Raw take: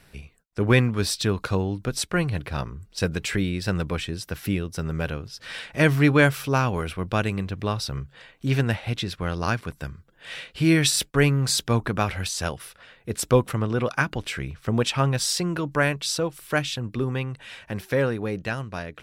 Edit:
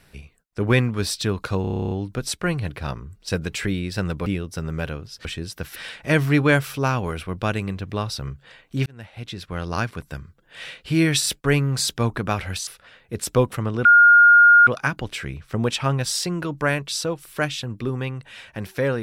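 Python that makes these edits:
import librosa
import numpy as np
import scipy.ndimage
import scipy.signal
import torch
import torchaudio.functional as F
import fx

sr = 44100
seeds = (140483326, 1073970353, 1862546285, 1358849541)

y = fx.edit(x, sr, fx.stutter(start_s=1.61, slice_s=0.03, count=11),
    fx.move(start_s=3.96, length_s=0.51, to_s=5.46),
    fx.fade_in_span(start_s=8.56, length_s=0.85),
    fx.cut(start_s=12.37, length_s=0.26),
    fx.insert_tone(at_s=13.81, length_s=0.82, hz=1420.0, db=-8.0), tone=tone)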